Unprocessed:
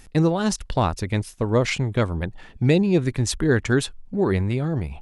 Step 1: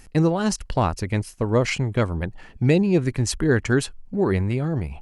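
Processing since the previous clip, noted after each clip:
notch filter 3,600 Hz, Q 7.3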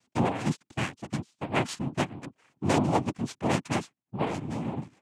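phase distortion by the signal itself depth 0.59 ms
cochlear-implant simulation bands 4
expander for the loud parts 1.5 to 1, over −41 dBFS
level −5 dB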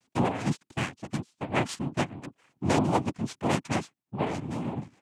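pitch vibrato 1.8 Hz 78 cents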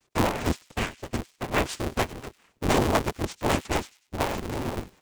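sub-harmonics by changed cycles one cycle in 2, inverted
delay with a high-pass on its return 98 ms, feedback 33%, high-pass 2,800 Hz, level −16.5 dB
level +2 dB

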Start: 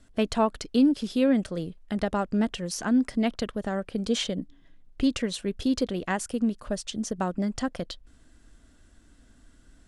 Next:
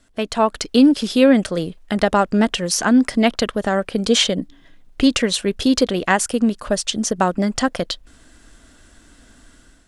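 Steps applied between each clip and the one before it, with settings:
low-shelf EQ 330 Hz −8 dB
automatic gain control gain up to 9 dB
level +4.5 dB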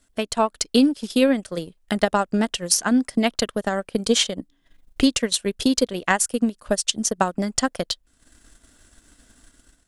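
high-shelf EQ 7,200 Hz +11.5 dB
transient designer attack +6 dB, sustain −10 dB
level −7 dB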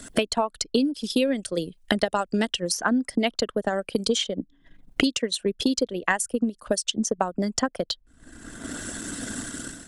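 spectral envelope exaggerated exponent 1.5
multiband upward and downward compressor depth 100%
level −3.5 dB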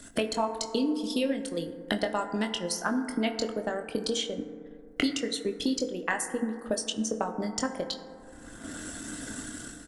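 double-tracking delay 23 ms −8 dB
feedback delay network reverb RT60 2.4 s, low-frequency decay 0.85×, high-frequency decay 0.25×, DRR 7 dB
level −6.5 dB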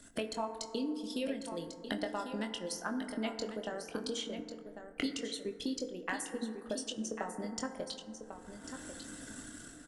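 single-tap delay 1,096 ms −9.5 dB
level −8.5 dB

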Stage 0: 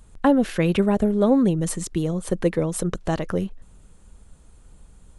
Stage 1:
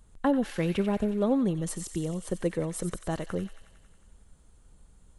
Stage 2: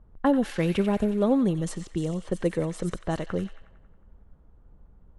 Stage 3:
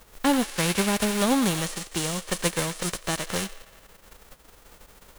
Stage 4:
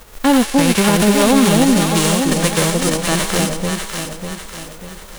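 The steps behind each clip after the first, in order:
notch filter 2,500 Hz, Q 23; delay with a high-pass on its return 91 ms, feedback 70%, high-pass 1,800 Hz, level −8.5 dB; level −7.5 dB
low-pass that shuts in the quiet parts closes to 1,000 Hz, open at −24.5 dBFS; level +3 dB
spectral envelope flattened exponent 0.3
harmonic and percussive parts rebalanced harmonic +5 dB; delay that swaps between a low-pass and a high-pass 298 ms, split 810 Hz, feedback 67%, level −2 dB; boost into a limiter +9 dB; level −1.5 dB

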